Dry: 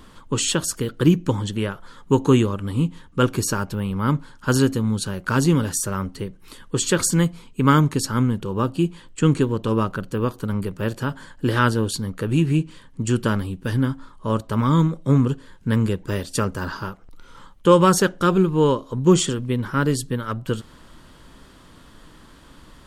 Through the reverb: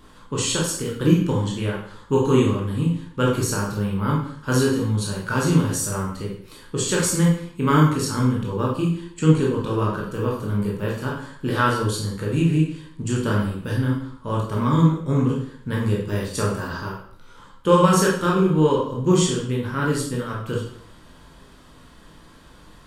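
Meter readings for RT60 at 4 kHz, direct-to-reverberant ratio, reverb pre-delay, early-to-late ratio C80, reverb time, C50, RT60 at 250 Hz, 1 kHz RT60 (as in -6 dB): 0.55 s, -4.0 dB, 15 ms, 7.5 dB, 0.60 s, 3.5 dB, 0.65 s, 0.60 s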